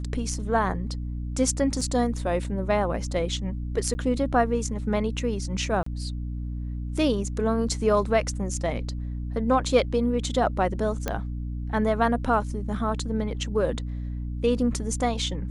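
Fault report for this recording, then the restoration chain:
hum 60 Hz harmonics 5 -31 dBFS
1.81 s: dropout 3.8 ms
3.94–3.95 s: dropout 10 ms
5.83–5.86 s: dropout 34 ms
11.08 s: pop -12 dBFS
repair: de-click; de-hum 60 Hz, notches 5; interpolate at 1.81 s, 3.8 ms; interpolate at 3.94 s, 10 ms; interpolate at 5.83 s, 34 ms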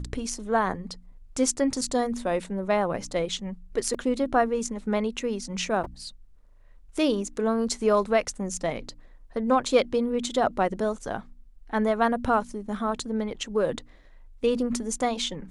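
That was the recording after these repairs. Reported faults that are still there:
nothing left

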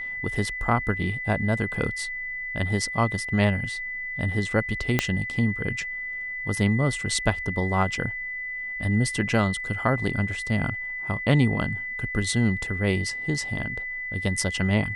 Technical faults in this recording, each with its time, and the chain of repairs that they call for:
whine 2 kHz -30 dBFS
4.99 s: pop -6 dBFS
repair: de-click; band-stop 2 kHz, Q 30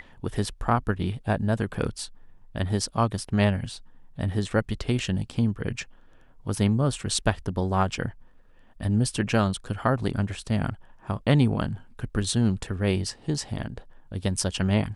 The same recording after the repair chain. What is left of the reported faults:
4.99 s: pop

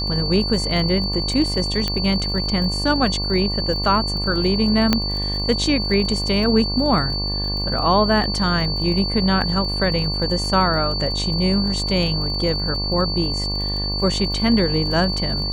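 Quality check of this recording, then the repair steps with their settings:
buzz 50 Hz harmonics 23 -26 dBFS
crackle 37 per s -28 dBFS
whine 4.5 kHz -24 dBFS
1.88 s: pop -8 dBFS
4.93 s: pop -2 dBFS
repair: de-click; de-hum 50 Hz, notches 23; band-stop 4.5 kHz, Q 30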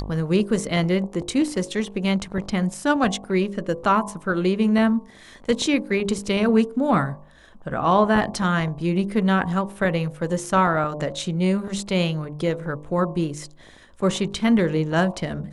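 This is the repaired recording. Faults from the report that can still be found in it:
nothing left

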